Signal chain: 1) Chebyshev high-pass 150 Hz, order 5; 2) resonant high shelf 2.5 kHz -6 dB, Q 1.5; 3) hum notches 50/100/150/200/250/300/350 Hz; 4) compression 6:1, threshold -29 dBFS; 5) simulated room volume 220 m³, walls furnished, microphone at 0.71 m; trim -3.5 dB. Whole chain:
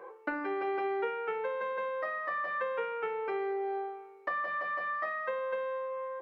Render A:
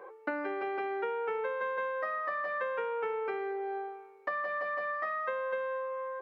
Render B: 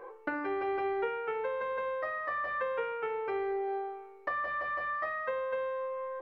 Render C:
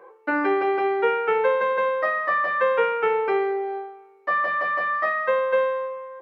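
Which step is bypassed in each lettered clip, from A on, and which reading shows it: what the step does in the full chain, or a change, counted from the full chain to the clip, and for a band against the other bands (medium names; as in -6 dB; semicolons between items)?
5, echo-to-direct -7.0 dB to none; 1, crest factor change +2.5 dB; 4, mean gain reduction 9.5 dB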